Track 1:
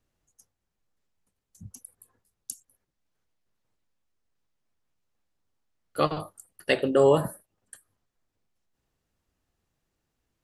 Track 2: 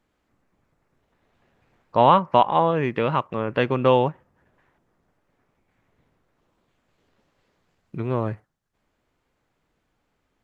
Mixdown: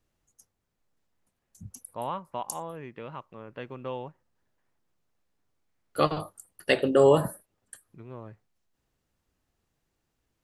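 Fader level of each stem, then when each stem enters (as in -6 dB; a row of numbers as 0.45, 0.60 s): +0.5, -18.0 dB; 0.00, 0.00 s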